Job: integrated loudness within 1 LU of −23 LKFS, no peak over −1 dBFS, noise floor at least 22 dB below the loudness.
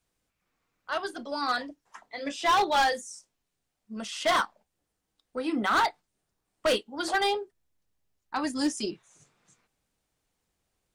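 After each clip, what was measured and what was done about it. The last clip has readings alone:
share of clipped samples 1.5%; peaks flattened at −19.5 dBFS; integrated loudness −28.5 LKFS; sample peak −19.5 dBFS; target loudness −23.0 LKFS
→ clipped peaks rebuilt −19.5 dBFS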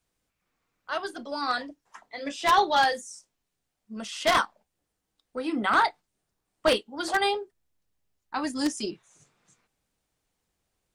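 share of clipped samples 0.0%; integrated loudness −27.0 LKFS; sample peak −10.5 dBFS; target loudness −23.0 LKFS
→ level +4 dB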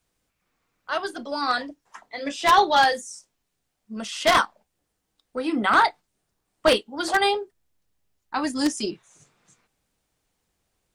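integrated loudness −23.0 LKFS; sample peak −6.5 dBFS; background noise floor −78 dBFS

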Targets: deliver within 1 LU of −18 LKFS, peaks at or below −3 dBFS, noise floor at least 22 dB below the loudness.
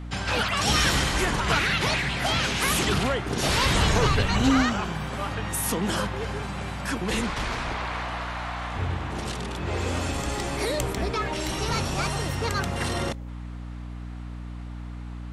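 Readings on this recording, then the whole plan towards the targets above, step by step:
mains hum 60 Hz; hum harmonics up to 300 Hz; level of the hum −33 dBFS; integrated loudness −25.5 LKFS; sample peak −9.0 dBFS; target loudness −18.0 LKFS
→ hum removal 60 Hz, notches 5
level +7.5 dB
brickwall limiter −3 dBFS

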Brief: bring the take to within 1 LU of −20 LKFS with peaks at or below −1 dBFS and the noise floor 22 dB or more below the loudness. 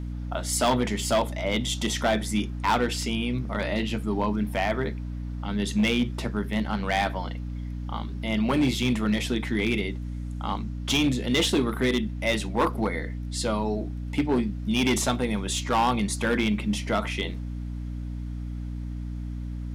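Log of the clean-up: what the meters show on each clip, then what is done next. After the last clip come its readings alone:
share of clipped samples 1.0%; peaks flattened at −17.0 dBFS; mains hum 60 Hz; hum harmonics up to 300 Hz; level of the hum −30 dBFS; integrated loudness −27.0 LKFS; sample peak −17.0 dBFS; target loudness −20.0 LKFS
→ clipped peaks rebuilt −17 dBFS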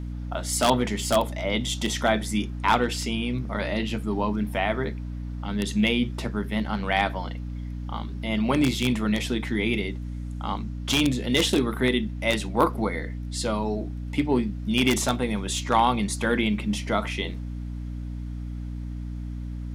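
share of clipped samples 0.0%; mains hum 60 Hz; hum harmonics up to 300 Hz; level of the hum −30 dBFS
→ hum removal 60 Hz, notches 5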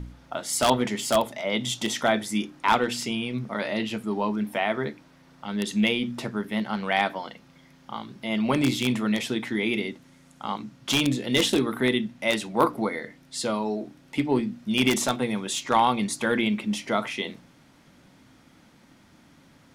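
mains hum none found; integrated loudness −26.0 LKFS; sample peak −7.5 dBFS; target loudness −20.0 LKFS
→ level +6 dB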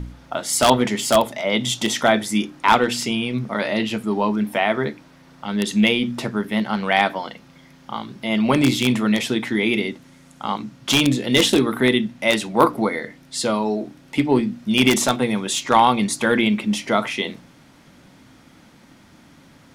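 integrated loudness −20.0 LKFS; sample peak −1.0 dBFS; background noise floor −50 dBFS

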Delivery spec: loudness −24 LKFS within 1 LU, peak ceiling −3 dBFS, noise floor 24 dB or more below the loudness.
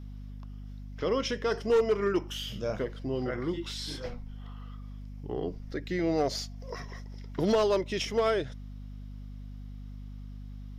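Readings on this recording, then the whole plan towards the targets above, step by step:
share of clipped samples 0.4%; peaks flattened at −19.0 dBFS; mains hum 50 Hz; hum harmonics up to 250 Hz; level of the hum −40 dBFS; integrated loudness −30.5 LKFS; sample peak −19.0 dBFS; target loudness −24.0 LKFS
→ clipped peaks rebuilt −19 dBFS
hum removal 50 Hz, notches 5
level +6.5 dB

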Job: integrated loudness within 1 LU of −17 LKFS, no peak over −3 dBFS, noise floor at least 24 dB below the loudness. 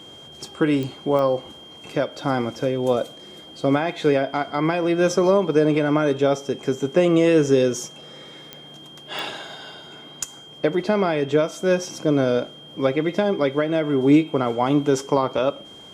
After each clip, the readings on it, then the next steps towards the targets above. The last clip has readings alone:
number of clicks 4; interfering tone 3,200 Hz; level of the tone −42 dBFS; integrated loudness −21.0 LKFS; sample peak −5.5 dBFS; target loudness −17.0 LKFS
→ click removal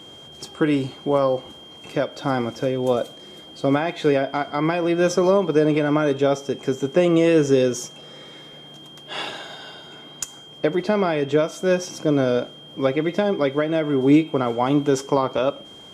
number of clicks 0; interfering tone 3,200 Hz; level of the tone −42 dBFS
→ notch filter 3,200 Hz, Q 30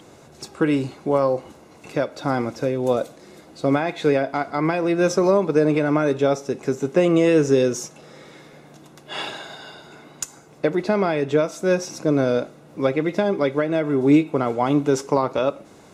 interfering tone none found; integrated loudness −21.5 LKFS; sample peak −5.5 dBFS; target loudness −17.0 LKFS
→ level +4.5 dB
brickwall limiter −3 dBFS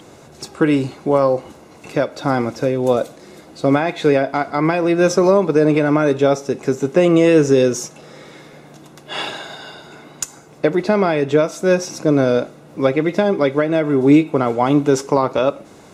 integrated loudness −17.0 LKFS; sample peak −3.0 dBFS; background noise floor −43 dBFS

